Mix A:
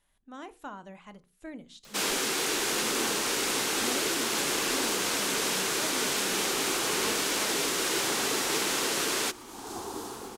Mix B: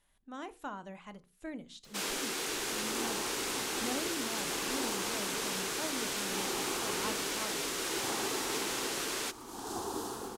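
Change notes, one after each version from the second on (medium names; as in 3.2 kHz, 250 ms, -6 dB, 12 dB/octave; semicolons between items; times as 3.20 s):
first sound -7.0 dB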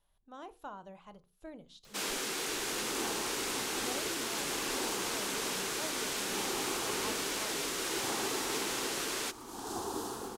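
speech: add graphic EQ 250/2000/8000 Hz -9/-11/-10 dB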